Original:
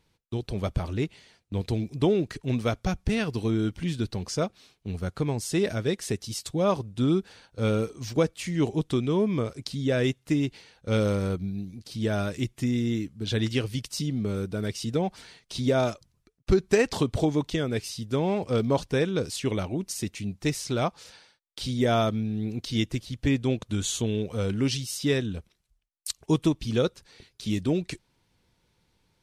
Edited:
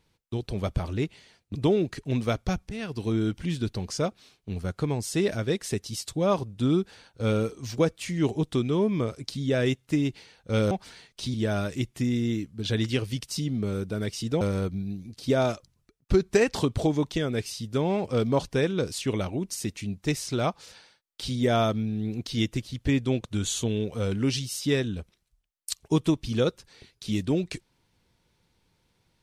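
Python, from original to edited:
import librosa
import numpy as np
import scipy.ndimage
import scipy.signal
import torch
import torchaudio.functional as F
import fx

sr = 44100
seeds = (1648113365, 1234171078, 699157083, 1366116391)

y = fx.edit(x, sr, fx.cut(start_s=1.55, length_s=0.38),
    fx.fade_in_from(start_s=3.07, length_s=0.46, floor_db=-12.5),
    fx.swap(start_s=11.09, length_s=0.87, other_s=15.03, other_length_s=0.63), tone=tone)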